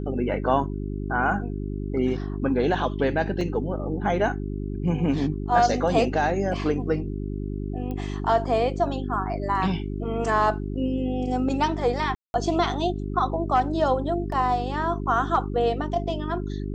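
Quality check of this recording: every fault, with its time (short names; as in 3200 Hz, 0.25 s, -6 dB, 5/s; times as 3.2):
hum 50 Hz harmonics 8 -30 dBFS
3.41 gap 2.5 ms
7.91 pop -22 dBFS
12.15–12.34 gap 0.191 s
14.32 gap 3.1 ms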